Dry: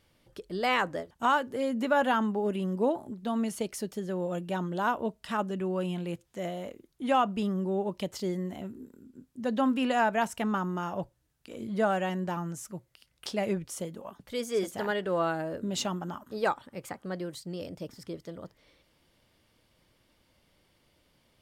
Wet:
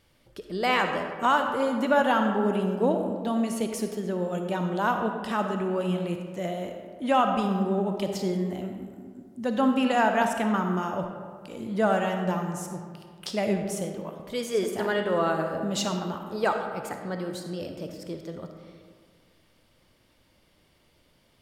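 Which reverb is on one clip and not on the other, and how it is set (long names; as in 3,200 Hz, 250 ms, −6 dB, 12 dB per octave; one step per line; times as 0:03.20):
comb and all-pass reverb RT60 1.9 s, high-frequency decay 0.5×, pre-delay 15 ms, DRR 4.5 dB
level +2.5 dB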